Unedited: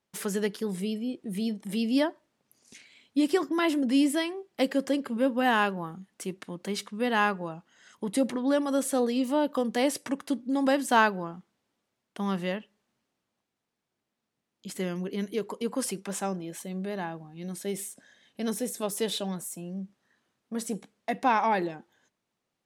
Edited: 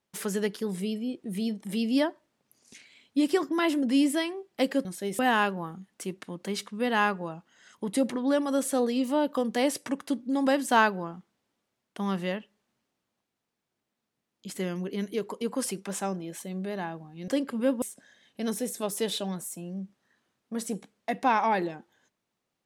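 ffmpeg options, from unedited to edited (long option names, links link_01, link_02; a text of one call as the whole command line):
ffmpeg -i in.wav -filter_complex "[0:a]asplit=5[link_01][link_02][link_03][link_04][link_05];[link_01]atrim=end=4.852[link_06];[link_02]atrim=start=17.478:end=17.822[link_07];[link_03]atrim=start=5.388:end=17.482[link_08];[link_04]atrim=start=4.848:end=5.392[link_09];[link_05]atrim=start=17.818[link_10];[link_06][link_07]acrossfade=duration=0.004:curve1=hsin:curve2=hsin[link_11];[link_11][link_08]acrossfade=duration=0.004:curve1=hsin:curve2=hsin[link_12];[link_12][link_09]acrossfade=duration=0.004:curve1=hsin:curve2=hsin[link_13];[link_13][link_10]acrossfade=duration=0.004:curve1=hsin:curve2=hsin" out.wav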